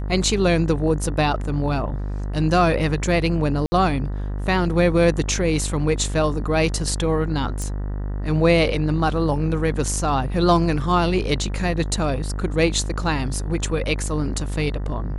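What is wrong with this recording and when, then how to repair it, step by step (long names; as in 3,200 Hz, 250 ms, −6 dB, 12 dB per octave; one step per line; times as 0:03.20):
mains buzz 50 Hz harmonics 39 −26 dBFS
0:03.66–0:03.72: drop-out 60 ms
0:07.62: click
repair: click removal
hum removal 50 Hz, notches 39
repair the gap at 0:03.66, 60 ms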